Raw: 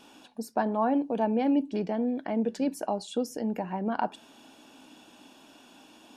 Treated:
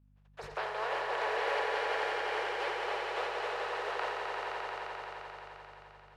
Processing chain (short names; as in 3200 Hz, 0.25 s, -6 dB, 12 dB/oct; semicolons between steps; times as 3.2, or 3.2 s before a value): spectral contrast lowered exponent 0.23; steep high-pass 380 Hz 72 dB/oct; gate -50 dBFS, range -30 dB; LPF 1900 Hz 12 dB/oct; in parallel at 0 dB: compressor, threshold -40 dBFS, peak gain reduction 14 dB; on the sum: hum 50 Hz, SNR 23 dB; swelling echo 87 ms, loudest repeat 5, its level -5 dB; on a send at -10 dB: reverb RT60 0.75 s, pre-delay 79 ms; on the sum: sustainer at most 40 dB/s; gain -9 dB